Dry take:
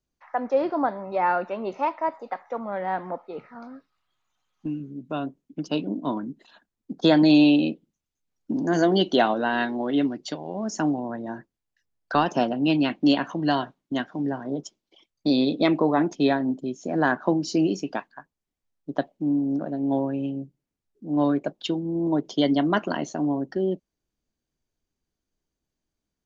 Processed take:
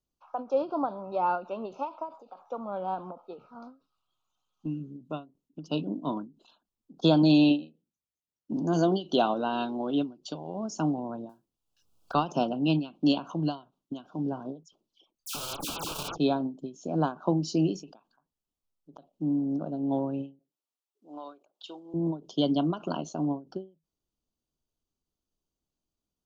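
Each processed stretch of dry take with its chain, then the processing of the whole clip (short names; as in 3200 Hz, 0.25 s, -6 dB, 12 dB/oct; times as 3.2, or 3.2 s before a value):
7.49–8.52 HPF 51 Hz + doubler 17 ms -11.5 dB + upward expander, over -29 dBFS
11.29–12.13 modulation noise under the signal 23 dB + three-band squash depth 100%
14.63–16.18 wrapped overs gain 24 dB + dispersion lows, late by 94 ms, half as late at 2400 Hz + core saturation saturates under 230 Hz
20.39–21.94 HPF 720 Hz + compressor, threshold -32 dBFS
whole clip: Chebyshev band-stop 1300–2800 Hz, order 2; dynamic EQ 160 Hz, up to +8 dB, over -48 dBFS, Q 6.1; ending taper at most 200 dB/s; gain -3.5 dB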